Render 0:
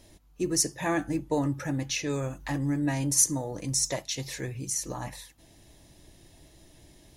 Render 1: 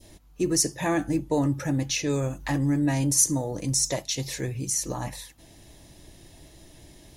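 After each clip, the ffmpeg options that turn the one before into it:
-filter_complex "[0:a]adynamicequalizer=threshold=0.00447:dfrequency=1500:dqfactor=0.71:tfrequency=1500:tqfactor=0.71:attack=5:release=100:ratio=0.375:range=2.5:mode=cutabove:tftype=bell,asplit=2[s0][s1];[s1]alimiter=limit=0.075:level=0:latency=1:release=30,volume=0.75[s2];[s0][s2]amix=inputs=2:normalize=0"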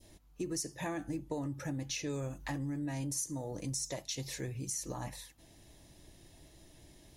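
-af "acompressor=threshold=0.0501:ratio=6,volume=0.398"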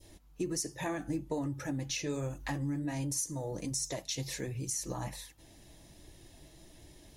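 -af "flanger=delay=2.1:depth=4.2:regen=-54:speed=1.3:shape=sinusoidal,volume=2.11"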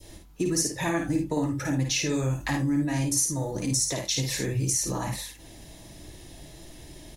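-filter_complex "[0:a]acrossover=split=430|720|5200[s0][s1][s2][s3];[s1]acompressor=threshold=0.002:ratio=6[s4];[s0][s4][s2][s3]amix=inputs=4:normalize=0,aecho=1:1:53|77:0.596|0.237,volume=2.66"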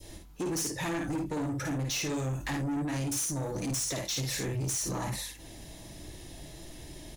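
-af "asoftclip=type=tanh:threshold=0.0355"

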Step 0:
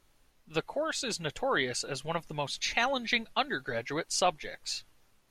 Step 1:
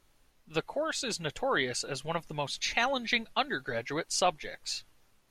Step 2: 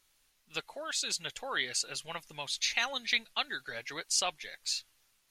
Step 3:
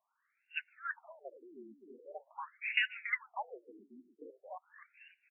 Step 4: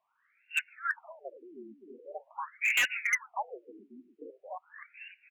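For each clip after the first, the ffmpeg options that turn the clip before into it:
-af anull
-af "tiltshelf=f=1300:g=-8.5,volume=0.562"
-filter_complex "[0:a]afreqshift=93,asplit=5[s0][s1][s2][s3][s4];[s1]adelay=282,afreqshift=-76,volume=0.266[s5];[s2]adelay=564,afreqshift=-152,volume=0.0989[s6];[s3]adelay=846,afreqshift=-228,volume=0.0363[s7];[s4]adelay=1128,afreqshift=-304,volume=0.0135[s8];[s0][s5][s6][s7][s8]amix=inputs=5:normalize=0,afftfilt=real='re*between(b*sr/1024,270*pow(2100/270,0.5+0.5*sin(2*PI*0.44*pts/sr))/1.41,270*pow(2100/270,0.5+0.5*sin(2*PI*0.44*pts/sr))*1.41)':imag='im*between(b*sr/1024,270*pow(2100/270,0.5+0.5*sin(2*PI*0.44*pts/sr))/1.41,270*pow(2100/270,0.5+0.5*sin(2*PI*0.44*pts/sr))*1.41)':win_size=1024:overlap=0.75,volume=1.19"
-af "lowpass=f=2600:t=q:w=2.3,volume=21.1,asoftclip=hard,volume=0.0473,volume=1.68"

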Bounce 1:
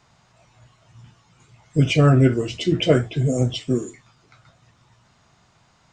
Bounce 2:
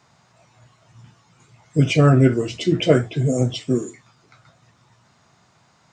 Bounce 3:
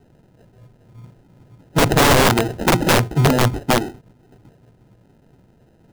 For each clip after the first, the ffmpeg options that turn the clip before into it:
-af "highpass=100,equalizer=f=3000:w=2.7:g=-3,volume=1.19"
-af "acrusher=samples=39:mix=1:aa=0.000001,tiltshelf=f=890:g=4.5,aeval=exprs='(mod(2.82*val(0)+1,2)-1)/2.82':c=same,volume=1.19"

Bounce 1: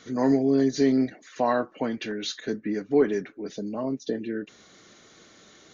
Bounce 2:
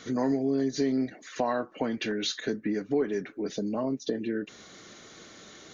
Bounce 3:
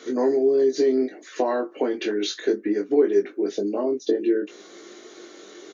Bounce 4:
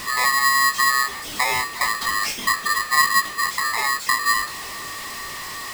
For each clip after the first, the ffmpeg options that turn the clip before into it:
-af "acompressor=threshold=0.0251:ratio=2.5,volume=1.58"
-filter_complex "[0:a]highpass=f=360:t=q:w=3.9,asplit=2[s0][s1];[s1]adelay=20,volume=0.596[s2];[s0][s2]amix=inputs=2:normalize=0"
-af "aeval=exprs='val(0)+0.5*0.0376*sgn(val(0))':c=same,aeval=exprs='val(0)*sgn(sin(2*PI*1500*n/s))':c=same"

